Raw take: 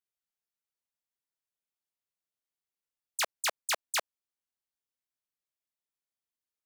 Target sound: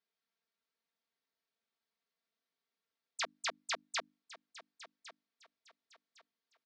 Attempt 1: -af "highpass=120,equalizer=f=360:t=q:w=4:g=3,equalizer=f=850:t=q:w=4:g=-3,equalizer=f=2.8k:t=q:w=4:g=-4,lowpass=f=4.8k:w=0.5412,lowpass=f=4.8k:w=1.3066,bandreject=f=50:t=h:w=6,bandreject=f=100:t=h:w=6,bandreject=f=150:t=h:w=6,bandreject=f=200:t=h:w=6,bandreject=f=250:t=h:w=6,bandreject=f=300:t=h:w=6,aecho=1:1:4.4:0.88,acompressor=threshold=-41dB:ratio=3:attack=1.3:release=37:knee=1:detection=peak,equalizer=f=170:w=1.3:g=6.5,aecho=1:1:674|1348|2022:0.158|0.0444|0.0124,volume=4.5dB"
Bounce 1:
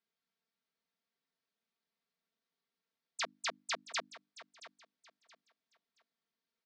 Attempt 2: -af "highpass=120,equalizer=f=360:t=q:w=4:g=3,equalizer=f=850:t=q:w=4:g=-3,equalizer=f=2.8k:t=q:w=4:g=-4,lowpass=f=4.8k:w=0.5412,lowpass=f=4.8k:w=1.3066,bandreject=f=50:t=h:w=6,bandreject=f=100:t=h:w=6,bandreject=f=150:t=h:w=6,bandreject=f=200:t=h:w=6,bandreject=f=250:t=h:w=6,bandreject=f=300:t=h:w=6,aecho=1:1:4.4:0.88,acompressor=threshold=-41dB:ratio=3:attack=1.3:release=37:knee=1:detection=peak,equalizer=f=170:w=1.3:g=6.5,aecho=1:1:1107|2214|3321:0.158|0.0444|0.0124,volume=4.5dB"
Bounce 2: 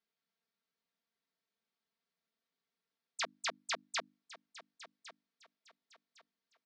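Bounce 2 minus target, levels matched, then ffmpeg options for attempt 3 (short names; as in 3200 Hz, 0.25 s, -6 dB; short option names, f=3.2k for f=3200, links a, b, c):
125 Hz band +5.5 dB
-af "highpass=120,equalizer=f=360:t=q:w=4:g=3,equalizer=f=850:t=q:w=4:g=-3,equalizer=f=2.8k:t=q:w=4:g=-4,lowpass=f=4.8k:w=0.5412,lowpass=f=4.8k:w=1.3066,bandreject=f=50:t=h:w=6,bandreject=f=100:t=h:w=6,bandreject=f=150:t=h:w=6,bandreject=f=200:t=h:w=6,bandreject=f=250:t=h:w=6,bandreject=f=300:t=h:w=6,aecho=1:1:4.4:0.88,acompressor=threshold=-41dB:ratio=3:attack=1.3:release=37:knee=1:detection=peak,aecho=1:1:1107|2214|3321:0.158|0.0444|0.0124,volume=4.5dB"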